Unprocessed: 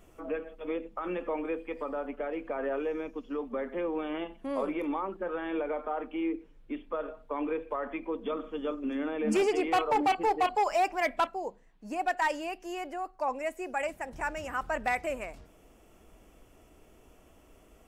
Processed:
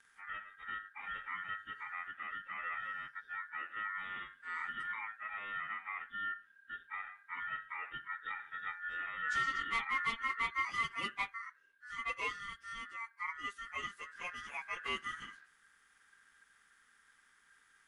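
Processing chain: frequency-domain pitch shifter -8.5 st; ring modulator 1.6 kHz; fifteen-band graphic EQ 100 Hz -8 dB, 630 Hz -7 dB, 4 kHz +4 dB, 10 kHz +12 dB; trim -5 dB

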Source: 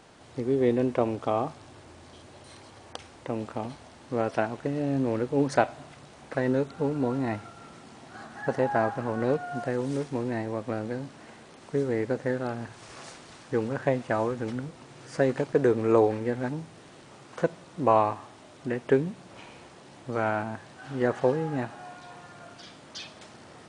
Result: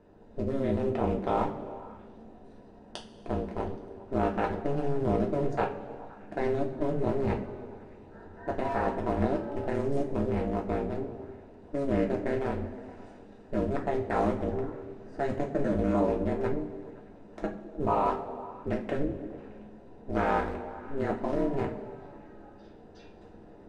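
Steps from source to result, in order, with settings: local Wiener filter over 41 samples; ring modulator 140 Hz; in parallel at +3 dB: compressor with a negative ratio -31 dBFS, ratio -0.5; on the sum: repeats whose band climbs or falls 103 ms, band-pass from 180 Hz, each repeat 0.7 oct, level -7.5 dB; two-slope reverb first 0.28 s, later 2 s, from -18 dB, DRR -1 dB; trim -7 dB

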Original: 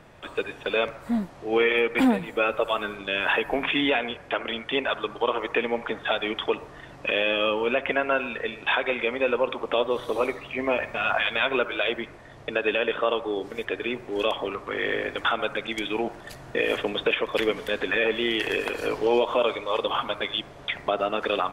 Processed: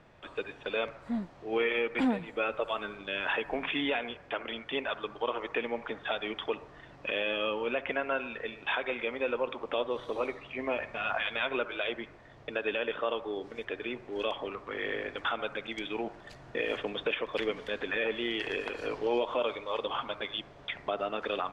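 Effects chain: low-pass 5.9 kHz 12 dB/octave; trim -7.5 dB

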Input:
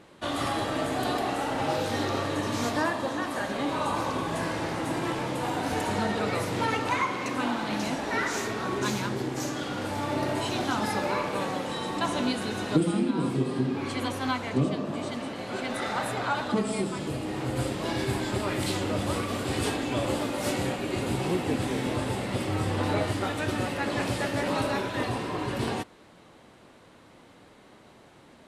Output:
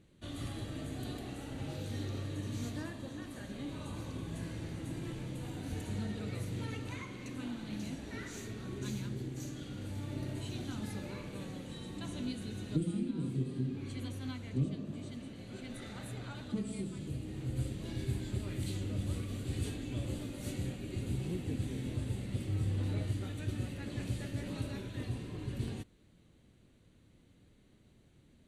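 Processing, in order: amplifier tone stack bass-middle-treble 10-0-1; band-stop 5.2 kHz, Q 6.5; trim +8.5 dB

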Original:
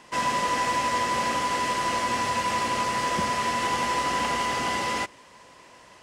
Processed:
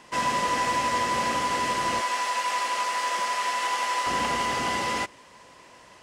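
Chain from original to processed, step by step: 2.01–4.07 s: high-pass 640 Hz 12 dB/octave

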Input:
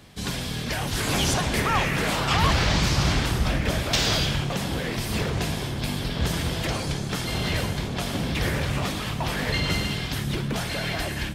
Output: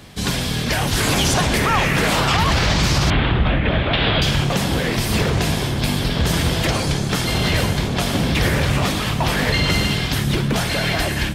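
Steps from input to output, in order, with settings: 3.10–4.22 s: steep low-pass 3.6 kHz 48 dB/octave; peak limiter -16 dBFS, peak gain reduction 9 dB; trim +8 dB

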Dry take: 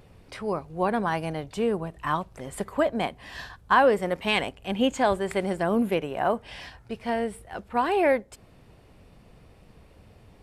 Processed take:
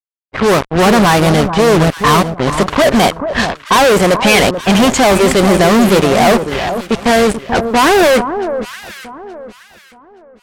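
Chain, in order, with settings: fuzz box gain 42 dB, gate -39 dBFS; gate -26 dBFS, range -38 dB; level-controlled noise filter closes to 770 Hz, open at -13 dBFS; on a send: echo whose repeats swap between lows and highs 436 ms, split 1.3 kHz, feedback 50%, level -8.5 dB; on the sum: trim +6 dB

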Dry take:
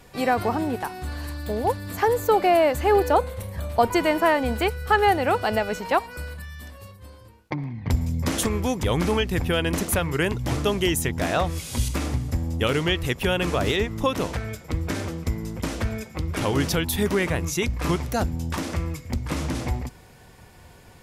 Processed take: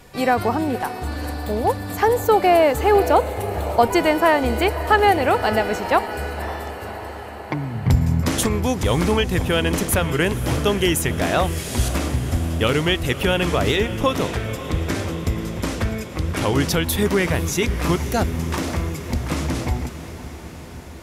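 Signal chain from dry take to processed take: 7.75–8.21 s: peaking EQ 140 Hz +12 dB 0.51 oct; echo that smears into a reverb 545 ms, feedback 70%, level -13.5 dB; trim +3.5 dB

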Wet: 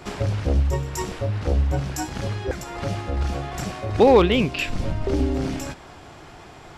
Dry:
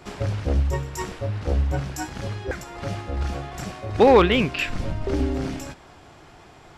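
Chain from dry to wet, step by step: dynamic bell 1.6 kHz, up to -7 dB, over -39 dBFS, Q 1.2; in parallel at -3 dB: compression, threshold -31 dBFS, peak gain reduction 18.5 dB

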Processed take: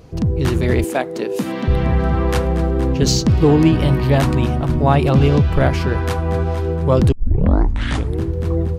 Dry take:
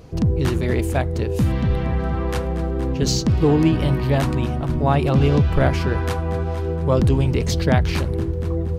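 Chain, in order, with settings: level rider gain up to 6 dB; 0.84–1.68 s: high-pass 220 Hz 24 dB/octave; 7.12 s: tape start 1.09 s

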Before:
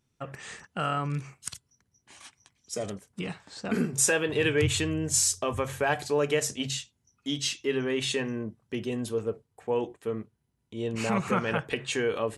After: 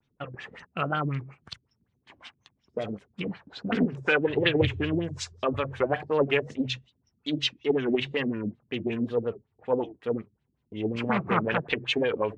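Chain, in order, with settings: LFO low-pass sine 5.4 Hz 240–3800 Hz; wow and flutter 120 cents; loudspeaker Doppler distortion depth 0.41 ms

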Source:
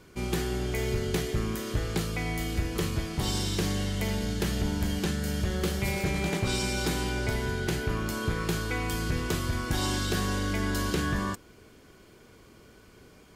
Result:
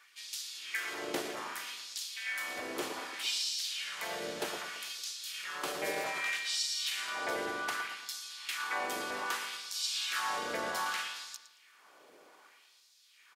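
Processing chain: LFO high-pass sine 0.64 Hz 570–5300 Hz; filtered feedback delay 113 ms, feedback 49%, low-pass 4 kHz, level -7.5 dB; harmony voices -7 st -18 dB, -4 st -2 dB; trim -6 dB

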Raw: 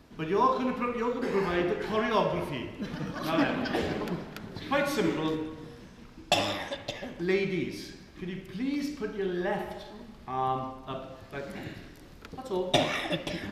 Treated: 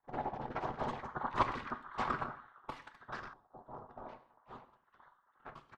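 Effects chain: local Wiener filter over 41 samples; Doppler pass-by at 3.25 s, 15 m/s, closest 16 m; spectral gate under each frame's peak -20 dB weak; rotary cabinet horn 8 Hz, later 1 Hz, at 3.51 s; whisper effect; doubling 19 ms -11 dB; gated-style reverb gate 500 ms falling, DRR 10.5 dB; speed mistake 33 rpm record played at 78 rpm; LFO low-pass saw up 0.3 Hz 740–1600 Hz; trim +16.5 dB

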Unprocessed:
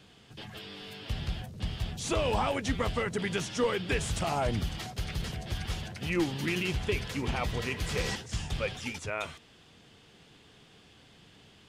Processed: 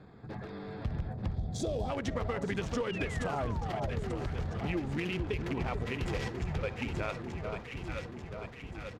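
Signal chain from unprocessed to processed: local Wiener filter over 15 samples; time-frequency box 1.73–2.46 s, 810–3200 Hz -16 dB; echo whose repeats swap between lows and highs 576 ms, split 1.2 kHz, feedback 75%, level -8 dB; reverberation RT60 0.35 s, pre-delay 35 ms, DRR 19.5 dB; painted sound fall, 3.75–5.46 s, 300–3000 Hz -41 dBFS; compression 5:1, threshold -36 dBFS, peak gain reduction 11.5 dB; treble shelf 5.8 kHz -9 dB; tempo 1.3×; trim +5.5 dB

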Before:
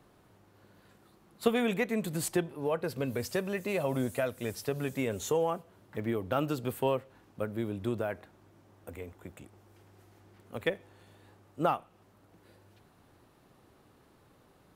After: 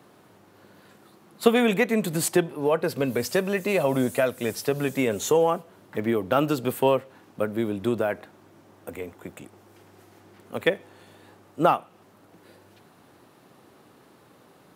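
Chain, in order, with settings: high-pass 150 Hz 12 dB/octave; trim +8.5 dB

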